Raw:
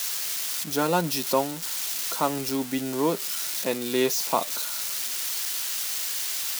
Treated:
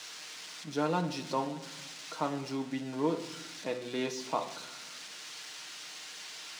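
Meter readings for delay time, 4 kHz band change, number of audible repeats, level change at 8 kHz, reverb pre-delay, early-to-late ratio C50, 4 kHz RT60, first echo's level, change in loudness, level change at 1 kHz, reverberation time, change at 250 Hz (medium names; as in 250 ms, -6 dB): no echo, -11.0 dB, no echo, -17.0 dB, 6 ms, 12.0 dB, 0.60 s, no echo, -11.0 dB, -7.5 dB, 0.95 s, -6.5 dB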